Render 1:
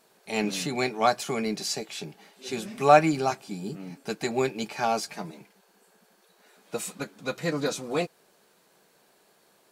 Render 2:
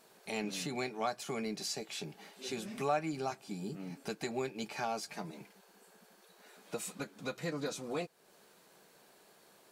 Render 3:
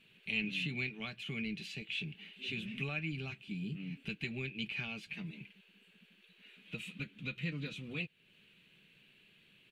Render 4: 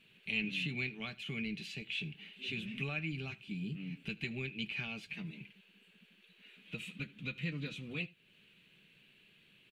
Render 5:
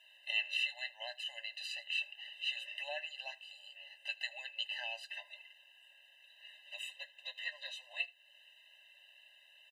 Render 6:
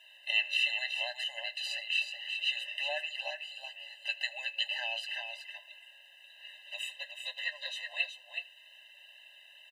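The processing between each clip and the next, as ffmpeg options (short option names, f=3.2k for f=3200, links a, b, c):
-af "acompressor=threshold=-42dB:ratio=2"
-af "firequalizer=gain_entry='entry(110,0);entry(330,-15);entry(740,-29);entry(2700,5);entry(5100,-25)':delay=0.05:min_phase=1,volume=7.5dB"
-af "aecho=1:1:79:0.075"
-af "afftfilt=real='re*eq(mod(floor(b*sr/1024/520),2),1)':imag='im*eq(mod(floor(b*sr/1024/520),2),1)':win_size=1024:overlap=0.75,volume=6dB"
-af "aecho=1:1:373:0.473,volume=5.5dB"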